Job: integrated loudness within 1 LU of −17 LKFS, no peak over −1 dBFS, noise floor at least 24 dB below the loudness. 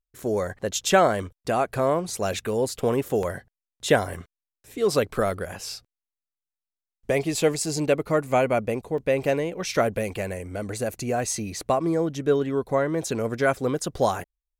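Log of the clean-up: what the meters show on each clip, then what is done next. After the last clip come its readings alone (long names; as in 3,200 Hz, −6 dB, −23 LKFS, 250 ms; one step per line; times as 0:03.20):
number of dropouts 5; longest dropout 2.1 ms; integrated loudness −25.0 LKFS; sample peak −5.5 dBFS; target loudness −17.0 LKFS
→ repair the gap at 0:03.23/0:04.14/0:05.16/0:07.42/0:08.98, 2.1 ms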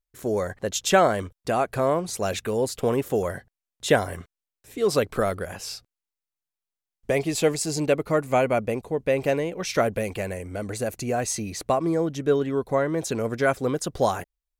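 number of dropouts 0; integrated loudness −25.0 LKFS; sample peak −5.5 dBFS; target loudness −17.0 LKFS
→ level +8 dB
brickwall limiter −1 dBFS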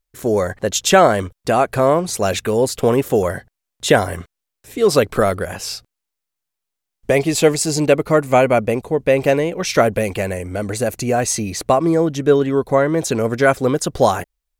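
integrated loudness −17.5 LKFS; sample peak −1.0 dBFS; background noise floor −81 dBFS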